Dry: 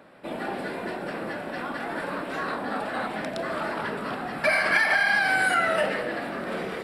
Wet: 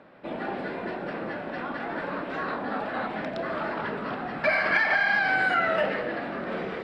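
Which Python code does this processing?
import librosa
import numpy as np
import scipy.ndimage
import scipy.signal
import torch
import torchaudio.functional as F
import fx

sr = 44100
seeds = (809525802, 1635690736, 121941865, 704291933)

y = fx.air_absorb(x, sr, metres=170.0)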